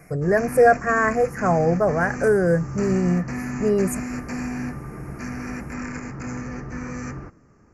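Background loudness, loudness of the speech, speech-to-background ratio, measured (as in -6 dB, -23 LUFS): -32.0 LUFS, -20.5 LUFS, 11.5 dB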